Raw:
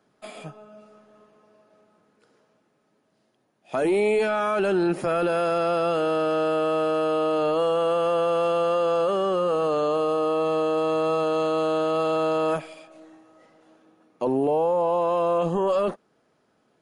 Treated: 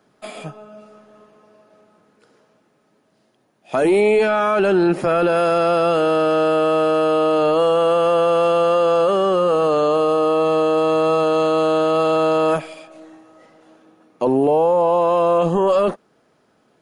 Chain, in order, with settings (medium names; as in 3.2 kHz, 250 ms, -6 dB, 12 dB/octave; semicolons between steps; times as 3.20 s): 4.01–5.36 s: treble shelf 8.5 kHz -9 dB; trim +6.5 dB